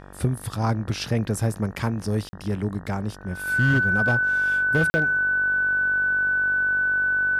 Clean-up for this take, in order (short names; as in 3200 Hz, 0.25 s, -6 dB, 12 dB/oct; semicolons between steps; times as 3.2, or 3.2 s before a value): clip repair -13.5 dBFS; de-hum 48 Hz, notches 39; notch 1500 Hz, Q 30; interpolate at 2.29/4.9, 40 ms